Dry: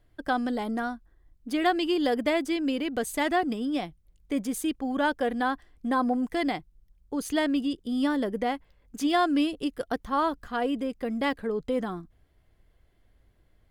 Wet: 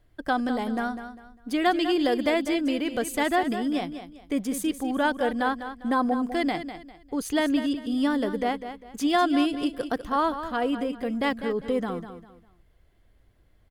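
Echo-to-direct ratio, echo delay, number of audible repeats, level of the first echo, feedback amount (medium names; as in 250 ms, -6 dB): -10.0 dB, 200 ms, 3, -10.5 dB, 30%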